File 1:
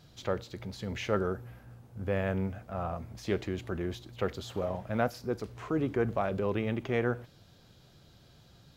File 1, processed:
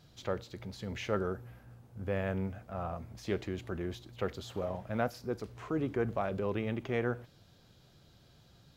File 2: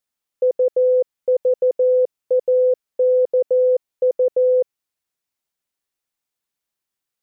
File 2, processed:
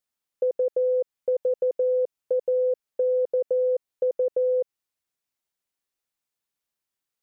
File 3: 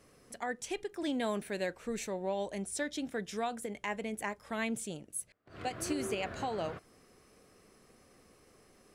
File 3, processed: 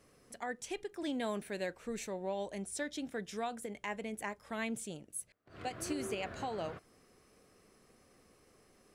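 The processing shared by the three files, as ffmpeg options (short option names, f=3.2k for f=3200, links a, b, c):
-af "acompressor=threshold=-19dB:ratio=3,volume=-3dB"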